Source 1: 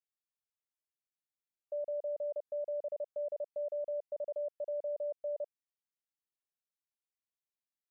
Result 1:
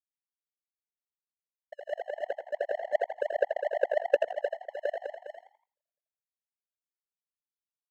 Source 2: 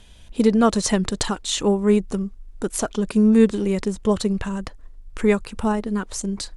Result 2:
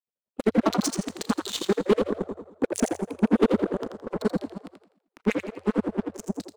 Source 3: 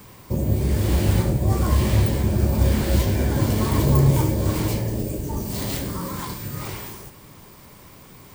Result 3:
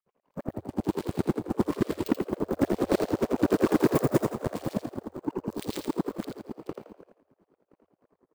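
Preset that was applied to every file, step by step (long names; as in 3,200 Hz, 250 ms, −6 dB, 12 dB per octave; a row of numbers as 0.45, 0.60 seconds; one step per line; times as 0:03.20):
adaptive Wiener filter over 25 samples
four-comb reverb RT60 1.6 s, combs from 30 ms, DRR 8.5 dB
rotating-speaker cabinet horn 6.7 Hz
auto-filter notch saw up 0.24 Hz 270–2,600 Hz
parametric band 160 Hz +2.5 dB 1.9 octaves
in parallel at +1.5 dB: downward compressor, threshold −27 dBFS
on the sum: auto-filter high-pass sine 9.8 Hz 250–3,800 Hz
power curve on the samples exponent 2
hard clipping −20.5 dBFS
high-shelf EQ 4,700 Hz −4 dB
on a send: echo with shifted repeats 83 ms, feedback 30%, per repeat +82 Hz, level −6 dB
on the sum: normalise the peak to −9 dBFS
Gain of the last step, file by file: +11.0, +7.0, +7.0 decibels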